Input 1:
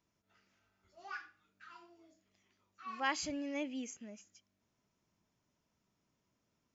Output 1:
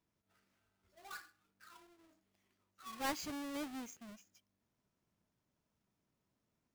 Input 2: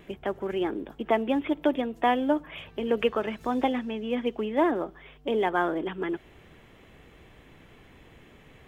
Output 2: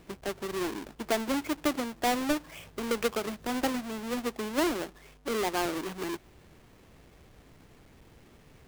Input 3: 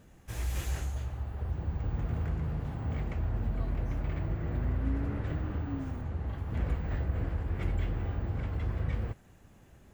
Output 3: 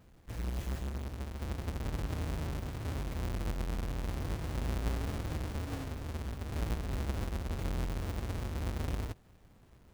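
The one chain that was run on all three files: half-waves squared off; gain -8 dB

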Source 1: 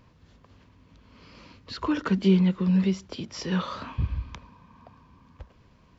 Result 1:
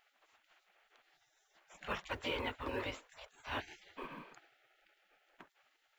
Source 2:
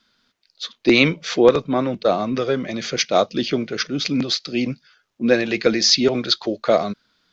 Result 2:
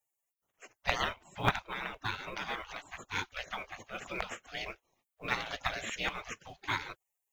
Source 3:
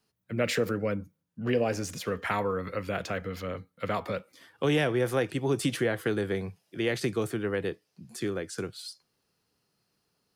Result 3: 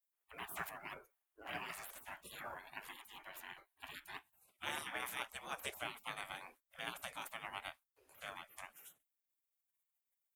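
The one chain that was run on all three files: spectral gate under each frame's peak -25 dB weak; bell 5000 Hz -14 dB 1.2 oct; short-mantissa float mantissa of 4-bit; gain +4 dB

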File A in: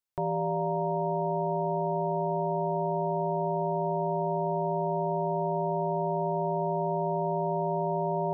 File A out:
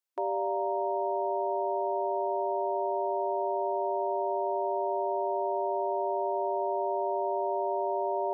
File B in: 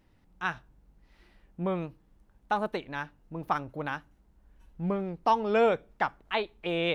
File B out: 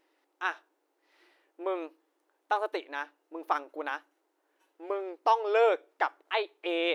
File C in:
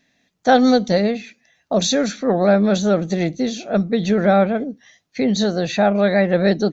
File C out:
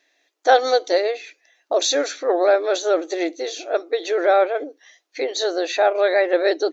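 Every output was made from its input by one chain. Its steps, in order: brick-wall FIR high-pass 290 Hz

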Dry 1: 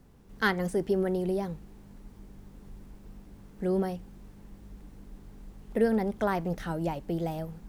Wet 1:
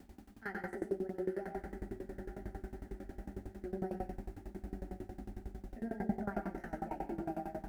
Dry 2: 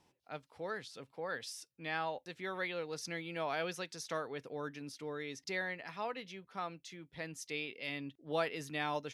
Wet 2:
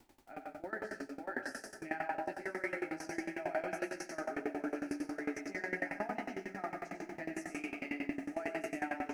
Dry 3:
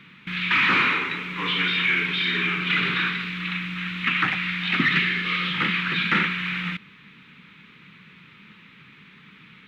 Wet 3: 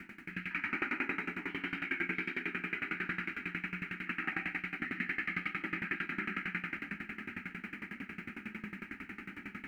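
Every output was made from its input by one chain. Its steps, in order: tilt -2.5 dB/oct; reverse; compressor 12:1, threshold -37 dBFS; reverse; chorus voices 4, 0.63 Hz, delay 17 ms, depth 4.6 ms; HPF 51 Hz; low shelf 140 Hz -9 dB; fixed phaser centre 720 Hz, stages 8; on a send: diffused feedback echo 0.987 s, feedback 58%, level -10 dB; on the sum: plate-style reverb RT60 0.78 s, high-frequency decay 0.9×, pre-delay 75 ms, DRR 0.5 dB; added noise pink -77 dBFS; dB-ramp tremolo decaying 11 Hz, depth 20 dB; gain +13.5 dB

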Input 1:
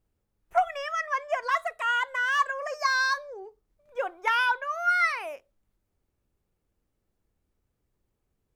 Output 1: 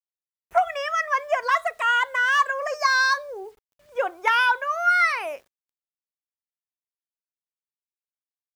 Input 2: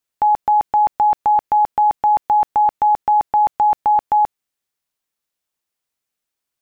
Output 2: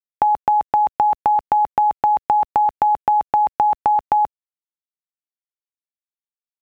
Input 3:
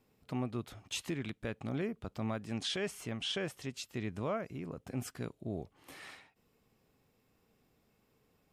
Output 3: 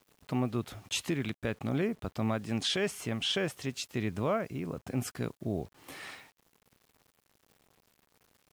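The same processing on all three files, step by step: HPF 43 Hz 12 dB/oct; compressor 20:1, threshold -19 dBFS; bit-crush 11-bit; gain +5.5 dB

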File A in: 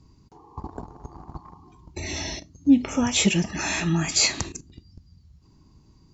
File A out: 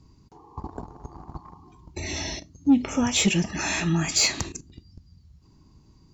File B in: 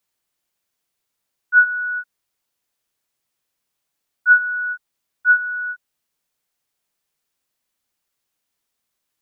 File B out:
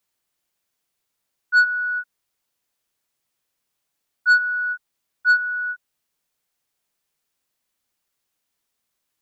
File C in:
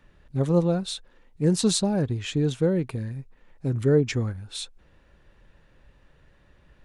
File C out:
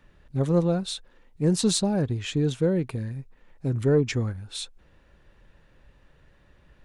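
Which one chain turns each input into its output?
soft clip -9.5 dBFS

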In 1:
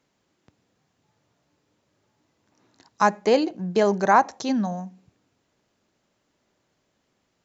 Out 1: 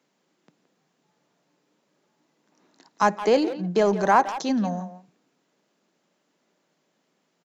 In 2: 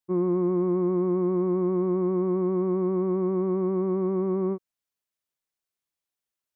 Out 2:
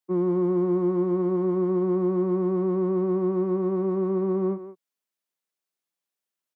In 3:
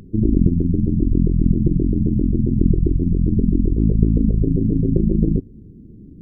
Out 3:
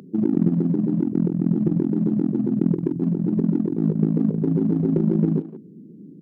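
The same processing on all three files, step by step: Chebyshev high-pass 160 Hz, order 4; in parallel at -9.5 dB: hard clip -22 dBFS; on the sum: speakerphone echo 0.17 s, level -11 dB; gain -1.5 dB

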